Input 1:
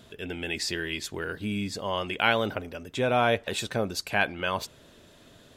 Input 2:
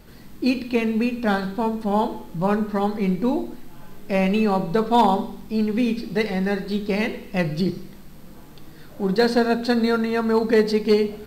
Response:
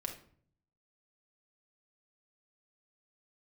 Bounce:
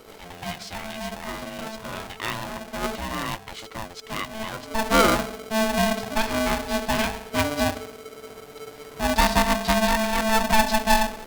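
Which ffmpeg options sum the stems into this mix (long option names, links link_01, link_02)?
-filter_complex "[0:a]lowpass=6000,volume=-6.5dB,asplit=2[link_01][link_02];[1:a]bandreject=frequency=660:width=12,volume=-1dB[link_03];[link_02]apad=whole_len=496985[link_04];[link_03][link_04]sidechaincompress=threshold=-46dB:ratio=20:attack=9.1:release=227[link_05];[link_01][link_05]amix=inputs=2:normalize=0,aeval=exprs='val(0)*sgn(sin(2*PI*440*n/s))':channel_layout=same"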